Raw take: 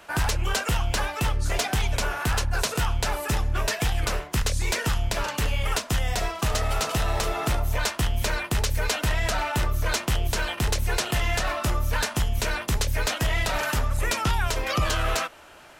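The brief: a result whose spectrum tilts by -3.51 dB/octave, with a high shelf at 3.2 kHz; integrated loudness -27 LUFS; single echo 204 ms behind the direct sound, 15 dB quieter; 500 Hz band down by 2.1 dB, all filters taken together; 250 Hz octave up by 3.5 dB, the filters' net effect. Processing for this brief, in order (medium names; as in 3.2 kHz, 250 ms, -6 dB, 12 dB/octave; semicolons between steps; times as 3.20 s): peaking EQ 250 Hz +6 dB; peaking EQ 500 Hz -4.5 dB; treble shelf 3.2 kHz +5.5 dB; delay 204 ms -15 dB; trim -2.5 dB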